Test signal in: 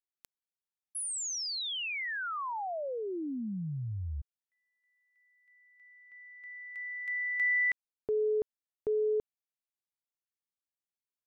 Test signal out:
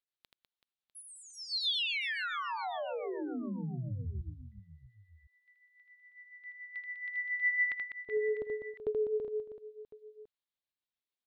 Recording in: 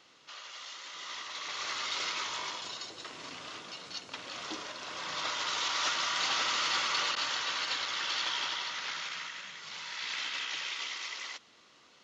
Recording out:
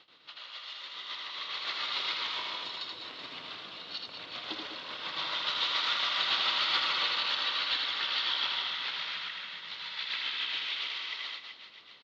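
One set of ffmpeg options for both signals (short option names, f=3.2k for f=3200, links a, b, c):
-af "highshelf=f=5.1k:t=q:w=3:g=-10,tremolo=f=7.1:d=0.82,aecho=1:1:80|200|380|650|1055:0.631|0.398|0.251|0.158|0.1"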